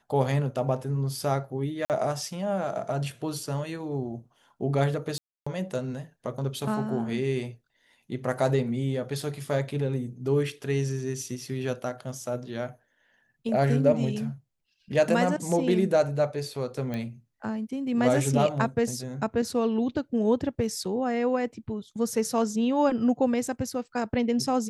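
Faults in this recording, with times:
1.85–1.9 gap 48 ms
5.18–5.46 gap 0.285 s
16.94 pop -20 dBFS

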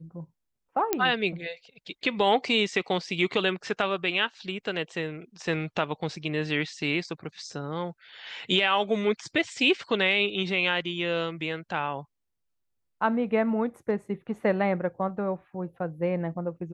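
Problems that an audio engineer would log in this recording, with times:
0.93 pop -8 dBFS

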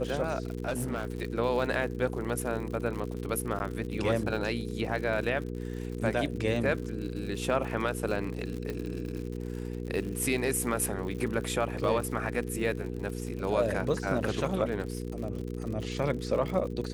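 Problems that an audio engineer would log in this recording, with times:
crackle 81/s -36 dBFS
hum 60 Hz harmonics 8 -36 dBFS
0.68–1.18 clipped -27 dBFS
3.59–3.6 gap 9.7 ms
8.7 pop -22 dBFS

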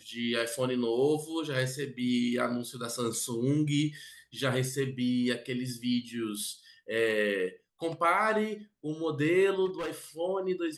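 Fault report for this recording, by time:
9.65–9.93 clipped -31 dBFS

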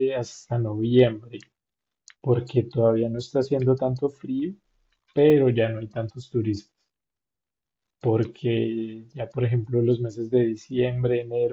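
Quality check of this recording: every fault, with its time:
5.3 gap 2.5 ms

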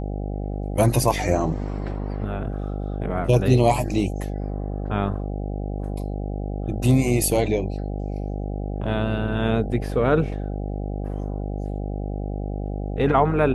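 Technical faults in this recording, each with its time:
buzz 50 Hz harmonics 16 -28 dBFS

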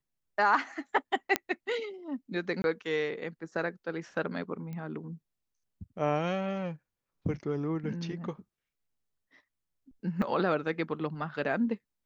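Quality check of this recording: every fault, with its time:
1.36 pop -9 dBFS
2.62–2.64 gap 21 ms
4.73 pop -29 dBFS
10.22 gap 4.3 ms

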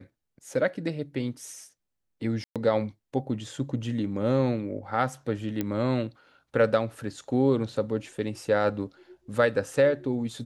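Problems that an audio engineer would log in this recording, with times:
2.44–2.56 gap 0.117 s
5.61 pop -15 dBFS

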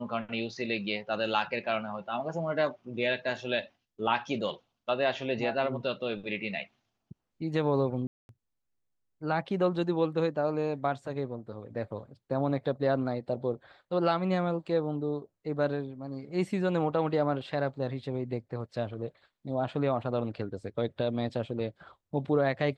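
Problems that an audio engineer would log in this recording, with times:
8.07–8.29 gap 0.221 s

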